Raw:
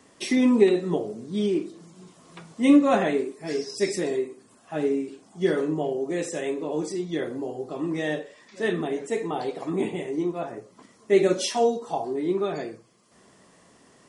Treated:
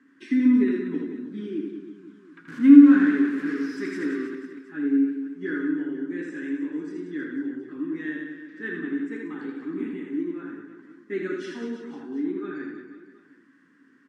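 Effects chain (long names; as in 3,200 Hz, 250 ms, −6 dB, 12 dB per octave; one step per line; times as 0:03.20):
0:02.48–0:04.27: converter with a step at zero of −26 dBFS
pair of resonant band-passes 660 Hz, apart 2.5 octaves
reverse bouncing-ball delay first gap 80 ms, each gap 1.3×, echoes 5
level +5 dB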